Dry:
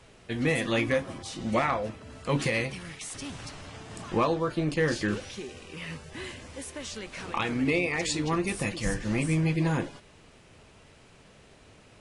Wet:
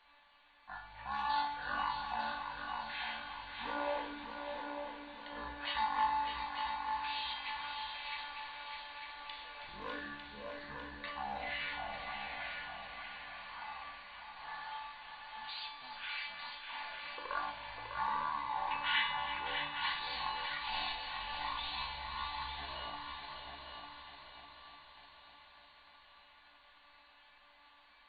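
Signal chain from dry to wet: EQ curve 140 Hz 0 dB, 200 Hz -13 dB, 530 Hz -10 dB, 900 Hz -15 dB, 1900 Hz +2 dB, 3200 Hz +7 dB; thin delay 0.137 s, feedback 81%, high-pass 4800 Hz, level -11 dB; speed mistake 78 rpm record played at 33 rpm; tone controls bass -14 dB, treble -4 dB; notch 1300 Hz, Q 5.2; resonator 290 Hz, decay 0.72 s, mix 90%; multi-head echo 0.3 s, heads second and third, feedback 52%, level -6.5 dB; gain +7.5 dB

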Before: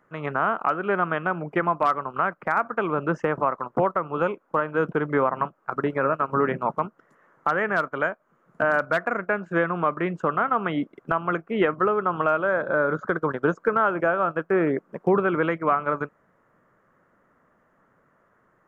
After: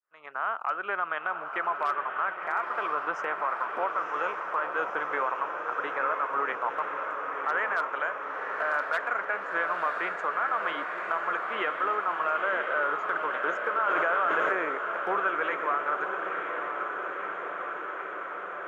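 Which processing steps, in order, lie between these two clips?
opening faded in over 0.81 s; HPF 860 Hz 12 dB/oct; limiter -19 dBFS, peak gain reduction 7 dB; on a send: diffused feedback echo 1.002 s, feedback 76%, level -5.5 dB; 13.87–14.53 on the sum: fast leveller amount 100%

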